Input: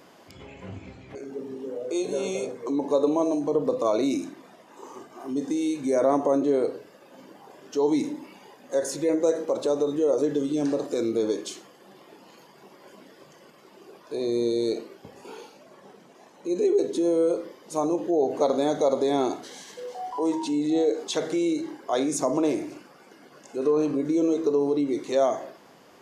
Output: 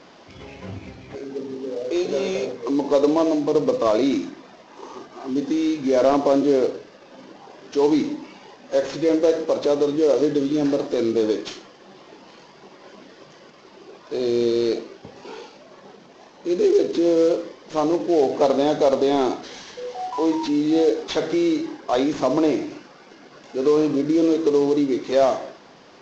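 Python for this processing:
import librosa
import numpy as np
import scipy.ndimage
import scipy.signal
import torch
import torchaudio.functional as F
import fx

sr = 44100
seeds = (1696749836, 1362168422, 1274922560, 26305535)

y = fx.cvsd(x, sr, bps=32000)
y = F.gain(torch.from_numpy(y), 5.0).numpy()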